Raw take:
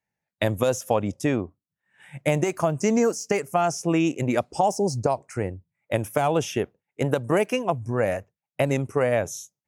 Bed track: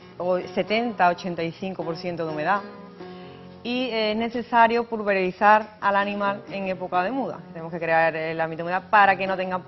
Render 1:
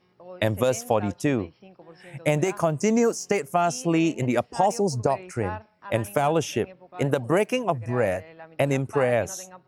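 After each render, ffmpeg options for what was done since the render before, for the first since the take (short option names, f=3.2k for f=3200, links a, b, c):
-filter_complex "[1:a]volume=-19dB[a];[0:a][a]amix=inputs=2:normalize=0"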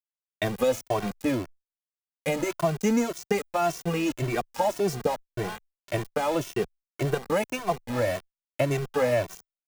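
-filter_complex "[0:a]aeval=exprs='val(0)*gte(abs(val(0)),0.0398)':c=same,asplit=2[a][b];[b]adelay=2.1,afreqshift=1.8[c];[a][c]amix=inputs=2:normalize=1"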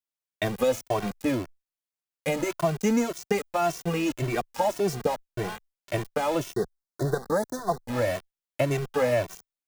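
-filter_complex "[0:a]asplit=3[a][b][c];[a]afade=t=out:st=6.52:d=0.02[d];[b]asuperstop=centerf=2600:order=8:qfactor=1.3,afade=t=in:st=6.52:d=0.02,afade=t=out:st=7.87:d=0.02[e];[c]afade=t=in:st=7.87:d=0.02[f];[d][e][f]amix=inputs=3:normalize=0"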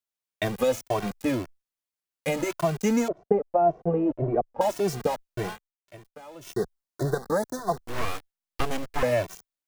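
-filter_complex "[0:a]asettb=1/sr,asplit=3[a][b][c];[a]atrim=end=3.084[d];[b]atrim=start=3.08:end=4.61,asetpts=PTS-STARTPTS,afade=t=in:d=0.004:c=qsin,afade=t=out:st=1.526:d=0.004:c=qsin,lowpass=f=620:t=q:w=2.3[e];[c]atrim=start=4.606[f];[d][e]acrossfade=d=0.004:c1=hsin:c2=qsin[g];[g][f]acrossfade=d=0.004:c1=qsin:c2=hsin,asettb=1/sr,asplit=3[h][i][j];[h]atrim=end=7.774[k];[i]atrim=start=7.77:end=9.03,asetpts=PTS-STARTPTS,afade=t=in:d=0.004:c=qsin,afade=t=out:st=1.256:d=0.004:c=qsin,aeval=exprs='abs(val(0))':c=same[l];[j]atrim=start=9.026[m];[k][l]acrossfade=d=0.004:c1=hsin:c2=qsin[n];[n][m]acrossfade=d=0.004:c1=qsin:c2=hsin,asplit=3[o][p][q];[o]atrim=end=5.6,asetpts=PTS-STARTPTS,afade=t=out:st=5.47:d=0.13:c=qsin:silence=0.11885[r];[p]atrim=start=5.6:end=6.41,asetpts=PTS-STARTPTS,volume=-18.5dB[s];[q]atrim=start=6.41,asetpts=PTS-STARTPTS,afade=t=in:d=0.13:c=qsin:silence=0.11885[t];[r][s][t]concat=n=3:v=0:a=1"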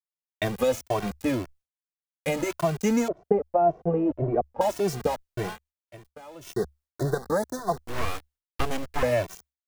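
-af "agate=range=-33dB:threshold=-53dB:ratio=3:detection=peak,equalizer=f=71:w=4.3:g=10"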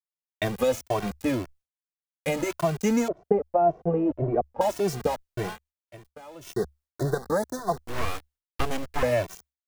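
-af anull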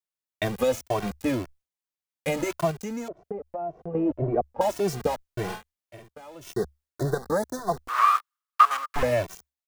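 -filter_complex "[0:a]asettb=1/sr,asplit=3[a][b][c];[a]atrim=end=2.714[d];[b]atrim=start=2.71:end=3.95,asetpts=PTS-STARTPTS,afade=t=in:d=0.004:c=qsin,afade=t=out:st=1.236:d=0.004:c=qsin,acompressor=threshold=-38dB:ratio=2:attack=3.2:release=140:knee=1:detection=peak[e];[c]atrim=start=3.946[f];[d][e]acrossfade=d=0.004:c1=hsin:c2=qsin[g];[g][f]acrossfade=d=0.004:c1=qsin:c2=hsin,asplit=3[h][i][j];[h]afade=t=out:st=5.48:d=0.02[k];[i]asplit=2[l][m];[m]adelay=48,volume=-3.5dB[n];[l][n]amix=inputs=2:normalize=0,afade=t=in:st=5.48:d=0.02,afade=t=out:st=6.08:d=0.02[o];[j]afade=t=in:st=6.08:d=0.02[p];[k][o][p]amix=inputs=3:normalize=0,asettb=1/sr,asplit=3[q][r][s];[q]atrim=end=7.884[t];[r]atrim=start=7.88:end=8.96,asetpts=PTS-STARTPTS,afade=t=in:d=0.004:c=qsin,afade=t=out:st=1.076:d=0.004:c=qsin,highpass=f=1.2k:t=q:w=13[u];[s]atrim=start=8.956[v];[t][u]acrossfade=d=0.004:c1=hsin:c2=qsin[w];[w][v]acrossfade=d=0.004:c1=qsin:c2=hsin"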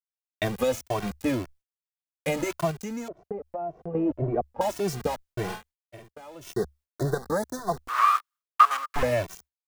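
-af "adynamicequalizer=threshold=0.0141:dfrequency=540:dqfactor=0.89:tfrequency=540:tqfactor=0.89:attack=5:release=100:ratio=0.375:range=2:mode=cutabove:tftype=bell,agate=range=-33dB:threshold=-49dB:ratio=3:detection=peak"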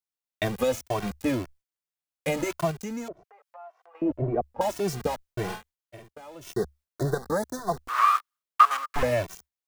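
-filter_complex "[0:a]asettb=1/sr,asplit=3[a][b][c];[a]atrim=end=3.244[d];[b]atrim=start=3.24:end=4.02,asetpts=PTS-STARTPTS,afade=t=in:d=0.004:c=qsin,afade=t=out:st=0.776:d=0.004:c=qsin,highpass=f=990:w=0.5412,highpass=f=990:w=1.3066[e];[c]atrim=start=4.016[f];[d][e]acrossfade=d=0.004:c1=hsin:c2=qsin[g];[g][f]acrossfade=d=0.004:c1=qsin:c2=hsin"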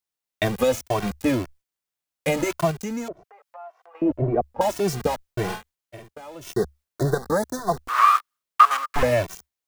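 -af "volume=4.5dB,alimiter=limit=-2dB:level=0:latency=1"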